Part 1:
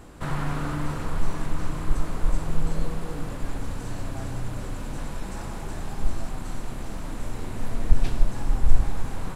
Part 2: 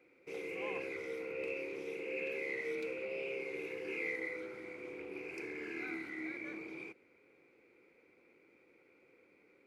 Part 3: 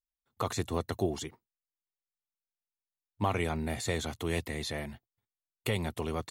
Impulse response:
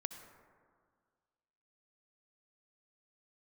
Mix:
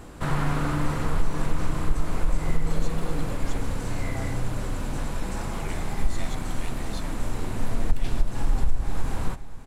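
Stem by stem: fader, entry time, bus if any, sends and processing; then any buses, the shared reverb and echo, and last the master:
+3.0 dB, 0.00 s, no send, echo send −15.5 dB, no processing
−1.0 dB, 0.00 s, no send, no echo send, pair of resonant band-passes 980 Hz, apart 2 octaves
−4.0 dB, 2.30 s, no send, no echo send, Bessel high-pass filter 2,100 Hz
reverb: not used
echo: single-tap delay 533 ms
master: downward compressor 6 to 1, threshold −14 dBFS, peak gain reduction 11.5 dB

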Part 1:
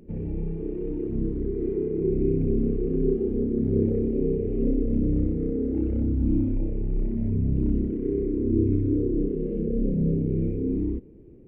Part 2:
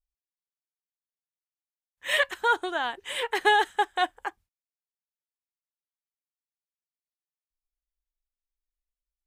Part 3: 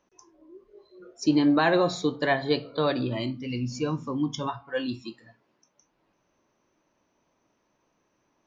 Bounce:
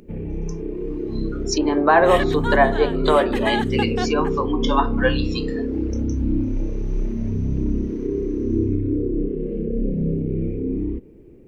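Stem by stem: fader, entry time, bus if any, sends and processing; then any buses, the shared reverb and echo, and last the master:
+2.5 dB, 0.00 s, no send, low-shelf EQ 73 Hz +9.5 dB
−3.5 dB, 0.00 s, no send, no processing
+0.5 dB, 0.30 s, no send, treble cut that deepens with the level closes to 1,300 Hz, closed at −22 dBFS; high-pass filter 560 Hz 12 dB per octave; automatic gain control gain up to 13 dB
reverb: not used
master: low-shelf EQ 140 Hz −8 dB; one half of a high-frequency compander encoder only

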